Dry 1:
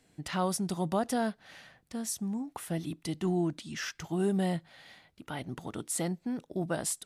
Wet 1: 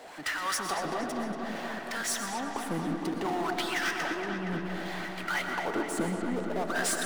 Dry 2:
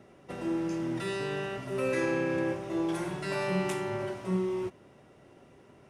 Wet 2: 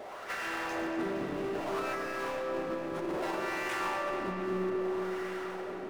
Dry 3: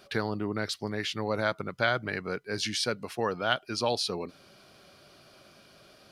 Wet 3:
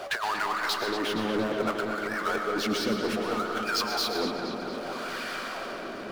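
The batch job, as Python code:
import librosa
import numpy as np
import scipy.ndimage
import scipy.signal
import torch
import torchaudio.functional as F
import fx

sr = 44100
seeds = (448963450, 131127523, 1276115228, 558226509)

y = fx.peak_eq(x, sr, hz=84.0, db=-13.5, octaves=1.1)
y = fx.wah_lfo(y, sr, hz=0.62, low_hz=210.0, high_hz=1700.0, q=2.3)
y = fx.tilt_eq(y, sr, slope=2.5)
y = fx.over_compress(y, sr, threshold_db=-44.0, ratio=-0.5)
y = fx.hpss(y, sr, part='percussive', gain_db=7)
y = fx.power_curve(y, sr, exponent=0.5)
y = fx.echo_filtered(y, sr, ms=234, feedback_pct=77, hz=4800.0, wet_db=-7.0)
y = fx.rev_freeverb(y, sr, rt60_s=1.4, hf_ratio=0.35, predelay_ms=80, drr_db=5.0)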